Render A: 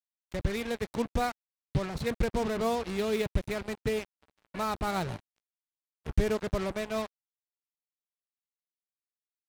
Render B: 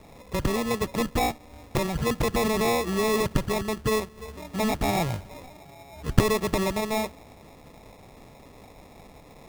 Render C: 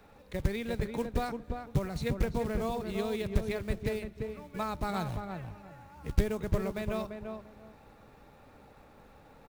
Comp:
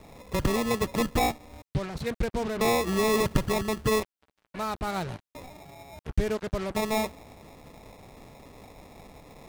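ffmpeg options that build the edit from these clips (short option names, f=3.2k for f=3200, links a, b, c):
-filter_complex "[0:a]asplit=3[a][b][c];[1:a]asplit=4[d][e][f][g];[d]atrim=end=1.622[h];[a]atrim=start=1.618:end=2.612[i];[e]atrim=start=2.608:end=4.032[j];[b]atrim=start=4.028:end=5.352[k];[f]atrim=start=5.348:end=5.992[l];[c]atrim=start=5.988:end=6.752[m];[g]atrim=start=6.748[n];[h][i]acrossfade=d=0.004:c1=hsin:c2=hsin[o];[o][j]acrossfade=d=0.004:c1=hsin:c2=hsin[p];[p][k]acrossfade=d=0.004:c1=hsin:c2=hsin[q];[q][l]acrossfade=d=0.004:c1=hsin:c2=hsin[r];[r][m]acrossfade=d=0.004:c1=hsin:c2=hsin[s];[s][n]acrossfade=d=0.004:c1=hsin:c2=hsin"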